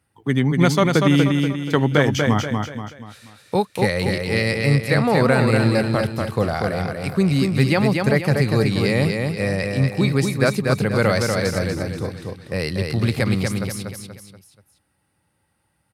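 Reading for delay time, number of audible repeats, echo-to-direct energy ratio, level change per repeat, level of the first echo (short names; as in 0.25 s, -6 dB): 0.24 s, 4, -3.0 dB, -7.5 dB, -4.0 dB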